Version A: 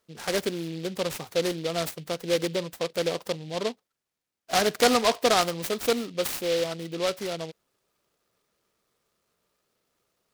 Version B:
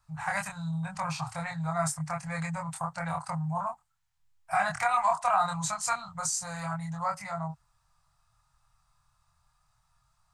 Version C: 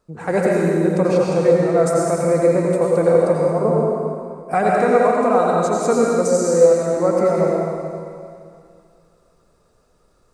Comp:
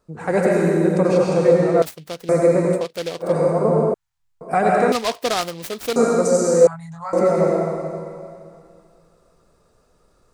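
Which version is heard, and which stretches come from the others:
C
1.82–2.29 s: from A
2.80–3.27 s: from A, crossfade 0.16 s
3.94–4.41 s: from B
4.92–5.96 s: from A
6.67–7.13 s: from B

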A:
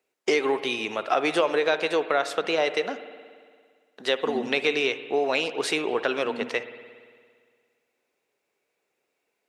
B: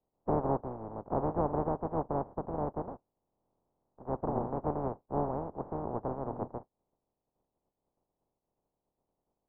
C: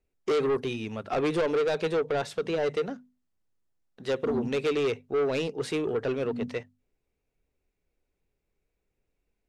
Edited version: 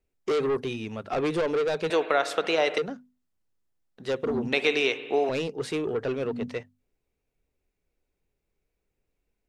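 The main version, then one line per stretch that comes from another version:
C
1.90–2.78 s: from A
4.53–5.29 s: from A
not used: B

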